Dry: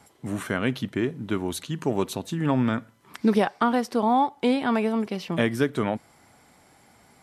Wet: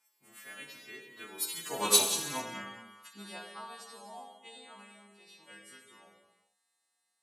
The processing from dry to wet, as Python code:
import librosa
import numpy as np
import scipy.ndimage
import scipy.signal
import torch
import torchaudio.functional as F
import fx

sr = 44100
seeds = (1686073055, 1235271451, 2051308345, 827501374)

p1 = fx.freq_snap(x, sr, grid_st=2)
p2 = fx.doppler_pass(p1, sr, speed_mps=29, closest_m=4.6, pass_at_s=1.94)
p3 = fx.highpass(p2, sr, hz=1300.0, slope=6)
p4 = 10.0 ** (-27.0 / 20.0) * np.tanh(p3 / 10.0 ** (-27.0 / 20.0))
p5 = p3 + F.gain(torch.from_numpy(p4), -4.5).numpy()
p6 = fx.rev_gated(p5, sr, seeds[0], gate_ms=470, shape='falling', drr_db=0.0)
p7 = fx.upward_expand(p6, sr, threshold_db=-35.0, expansion=1.5)
y = F.gain(torch.from_numpy(p7), 3.0).numpy()